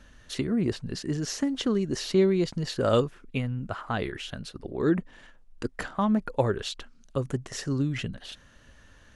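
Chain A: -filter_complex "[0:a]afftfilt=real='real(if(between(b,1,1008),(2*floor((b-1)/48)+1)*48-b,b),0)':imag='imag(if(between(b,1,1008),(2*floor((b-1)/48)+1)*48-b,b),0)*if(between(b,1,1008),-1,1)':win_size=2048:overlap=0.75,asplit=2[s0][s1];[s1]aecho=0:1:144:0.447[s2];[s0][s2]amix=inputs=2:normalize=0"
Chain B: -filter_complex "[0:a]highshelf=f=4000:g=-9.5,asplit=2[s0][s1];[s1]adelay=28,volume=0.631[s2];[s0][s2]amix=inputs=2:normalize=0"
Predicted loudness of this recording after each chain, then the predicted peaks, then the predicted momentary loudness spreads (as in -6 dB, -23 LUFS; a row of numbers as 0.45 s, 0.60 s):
-27.5 LUFS, -27.5 LUFS; -9.0 dBFS, -9.5 dBFS; 13 LU, 14 LU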